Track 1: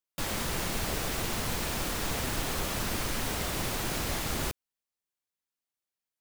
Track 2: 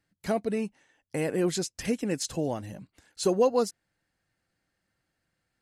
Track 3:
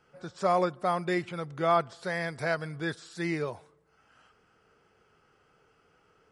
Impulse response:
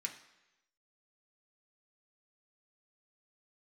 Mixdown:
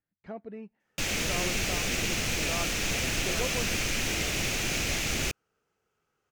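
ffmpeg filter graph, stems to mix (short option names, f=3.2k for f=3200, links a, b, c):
-filter_complex "[0:a]equalizer=f=1k:t=o:w=0.67:g=-8,equalizer=f=2.5k:t=o:w=0.67:g=10,equalizer=f=6.3k:t=o:w=0.67:g=10,equalizer=f=16k:t=o:w=0.67:g=4,adelay=800,volume=1dB[a];[1:a]lowpass=2.4k,volume=-12.5dB,asplit=2[b][c];[c]volume=-23.5dB[d];[2:a]adelay=850,volume=-13.5dB[e];[3:a]atrim=start_sample=2205[f];[d][f]afir=irnorm=-1:irlink=0[g];[a][b][e][g]amix=inputs=4:normalize=0,highshelf=f=7.4k:g=-9"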